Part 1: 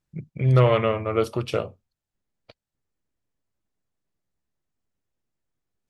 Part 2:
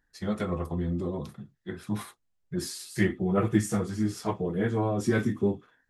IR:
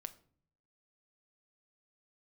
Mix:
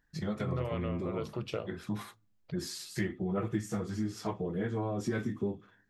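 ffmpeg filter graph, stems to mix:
-filter_complex "[0:a]volume=0.447,asplit=2[s0][s1];[s1]volume=0.316[s2];[1:a]volume=0.891,asplit=3[s3][s4][s5];[s4]volume=0.2[s6];[s5]apad=whole_len=259911[s7];[s0][s7]sidechaincompress=threshold=0.0178:ratio=8:attack=46:release=874[s8];[2:a]atrim=start_sample=2205[s9];[s2][s6]amix=inputs=2:normalize=0[s10];[s10][s9]afir=irnorm=-1:irlink=0[s11];[s8][s3][s11]amix=inputs=3:normalize=0,equalizer=f=9800:w=2.5:g=-9.5,acompressor=threshold=0.0224:ratio=2.5"

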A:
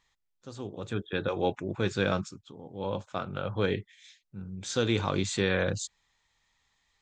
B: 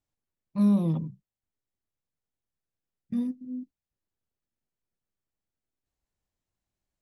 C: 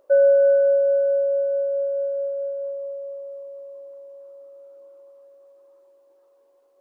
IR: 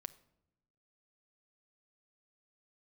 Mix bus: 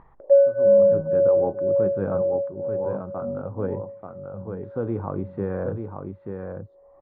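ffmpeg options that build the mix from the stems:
-filter_complex "[0:a]volume=0.794,asplit=3[s0][s1][s2];[s1]volume=0.531[s3];[s2]volume=0.668[s4];[1:a]asoftclip=type=tanh:threshold=0.0531,adelay=100,volume=0.398,asplit=2[s5][s6];[s6]volume=0.596[s7];[2:a]asplit=2[s8][s9];[s9]afreqshift=2[s10];[s8][s10]amix=inputs=2:normalize=1,adelay=200,volume=1.41[s11];[3:a]atrim=start_sample=2205[s12];[s3][s7]amix=inputs=2:normalize=0[s13];[s13][s12]afir=irnorm=-1:irlink=0[s14];[s4]aecho=0:1:886:1[s15];[s0][s5][s11][s14][s15]amix=inputs=5:normalize=0,lowpass=f=1100:w=0.5412,lowpass=f=1100:w=1.3066,acompressor=mode=upward:threshold=0.02:ratio=2.5"

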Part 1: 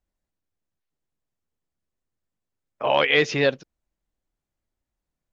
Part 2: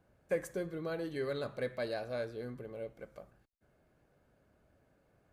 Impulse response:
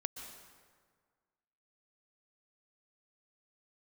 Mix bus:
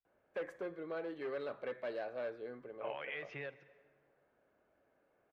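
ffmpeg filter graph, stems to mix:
-filter_complex "[0:a]acompressor=threshold=0.0631:ratio=10,equalizer=f=125:t=o:w=1:g=10,equalizer=f=250:t=o:w=1:g=-11,equalizer=f=500:t=o:w=1:g=-5,equalizer=f=1000:t=o:w=1:g=-6,equalizer=f=4000:t=o:w=1:g=-10,volume=0.282,asplit=2[s0][s1];[s1]volume=0.376[s2];[1:a]volume=44.7,asoftclip=hard,volume=0.0224,adelay=50,volume=0.841[s3];[2:a]atrim=start_sample=2205[s4];[s2][s4]afir=irnorm=-1:irlink=0[s5];[s0][s3][s5]amix=inputs=3:normalize=0,acrossover=split=280 3300:gain=0.141 1 0.0708[s6][s7][s8];[s6][s7][s8]amix=inputs=3:normalize=0"

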